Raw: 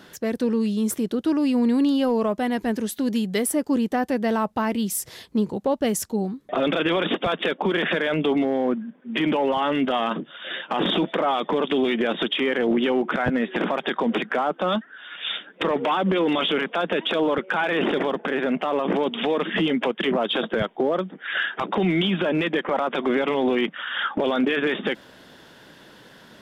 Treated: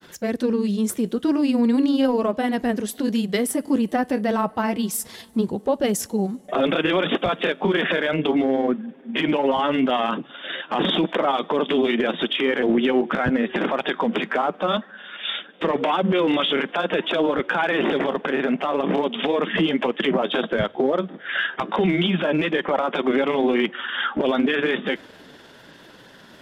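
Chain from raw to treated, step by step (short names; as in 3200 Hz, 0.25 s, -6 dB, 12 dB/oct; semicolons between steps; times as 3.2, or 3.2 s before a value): two-slope reverb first 0.3 s, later 3.8 s, from -18 dB, DRR 18.5 dB; grains 0.1 s, spray 15 ms, pitch spread up and down by 0 st; gain +2.5 dB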